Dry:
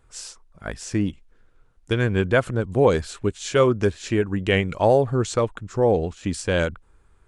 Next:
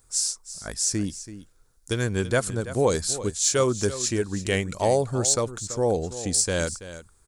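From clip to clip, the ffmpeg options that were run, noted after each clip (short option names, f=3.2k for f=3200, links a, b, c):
-af "aexciter=amount=5.1:drive=7.8:freq=4.2k,aecho=1:1:332:0.2,volume=-4.5dB"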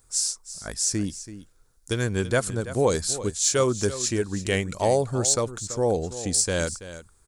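-af anull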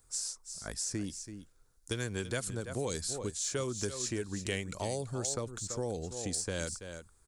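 -filter_complex "[0:a]acrossover=split=340|2100[a][b][c];[a]acompressor=threshold=-31dB:ratio=4[d];[b]acompressor=threshold=-33dB:ratio=4[e];[c]acompressor=threshold=-29dB:ratio=4[f];[d][e][f]amix=inputs=3:normalize=0,volume=-5.5dB"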